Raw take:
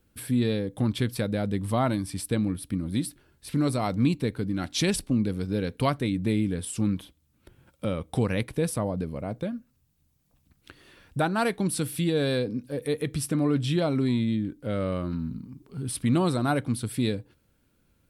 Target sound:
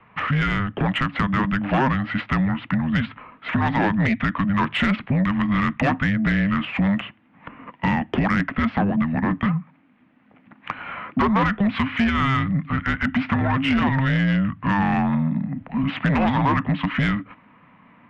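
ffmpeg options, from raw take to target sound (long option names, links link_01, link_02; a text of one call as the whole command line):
ffmpeg -i in.wav -filter_complex "[0:a]asubboost=boost=9:cutoff=120,highpass=frequency=210:width_type=q:width=0.5412,highpass=frequency=210:width_type=q:width=1.307,lowpass=frequency=2900:width_type=q:width=0.5176,lowpass=frequency=2900:width_type=q:width=0.7071,lowpass=frequency=2900:width_type=q:width=1.932,afreqshift=-400,aresample=16000,aeval=exprs='0.335*sin(PI/2*2.51*val(0)/0.335)':channel_layout=same,aresample=44100,acrossover=split=250|910[link_01][link_02][link_03];[link_01]acompressor=threshold=-24dB:ratio=4[link_04];[link_02]acompressor=threshold=-38dB:ratio=4[link_05];[link_03]acompressor=threshold=-33dB:ratio=4[link_06];[link_04][link_05][link_06]amix=inputs=3:normalize=0,asplit=2[link_07][link_08];[link_08]highpass=frequency=720:poles=1,volume=22dB,asoftclip=type=tanh:threshold=-7dB[link_09];[link_07][link_09]amix=inputs=2:normalize=0,lowpass=frequency=1900:poles=1,volume=-6dB" out.wav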